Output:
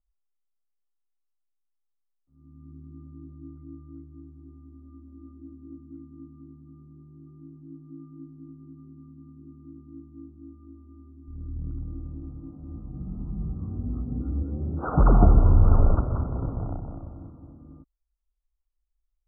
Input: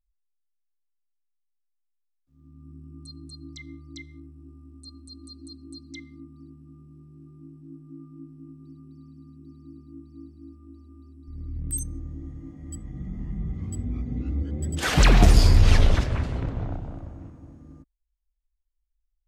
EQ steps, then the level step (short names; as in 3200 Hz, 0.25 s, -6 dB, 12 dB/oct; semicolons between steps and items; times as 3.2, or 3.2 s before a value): Chebyshev low-pass 1400 Hz, order 8; 0.0 dB